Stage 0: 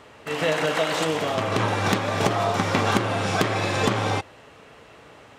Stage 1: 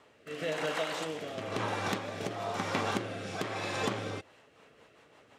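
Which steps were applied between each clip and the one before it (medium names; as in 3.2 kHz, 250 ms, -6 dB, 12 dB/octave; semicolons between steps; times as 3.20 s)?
bass shelf 110 Hz -10.5 dB; rotary cabinet horn 1 Hz, later 6 Hz, at 3.96 s; trim -8.5 dB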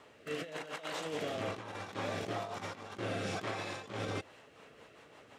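compressor with a negative ratio -38 dBFS, ratio -0.5; trim -1 dB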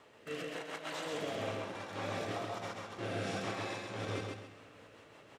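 feedback delay 133 ms, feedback 29%, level -3 dB; on a send at -11 dB: reverberation RT60 1.8 s, pre-delay 6 ms; on the sum: trim -2.5 dB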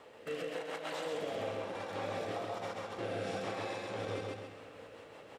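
graphic EQ with 31 bands 125 Hz -4 dB, 500 Hz +8 dB, 800 Hz +4 dB, 6.3 kHz -3 dB; compression 2:1, threshold -41 dBFS, peak gain reduction 6.5 dB; trim +2.5 dB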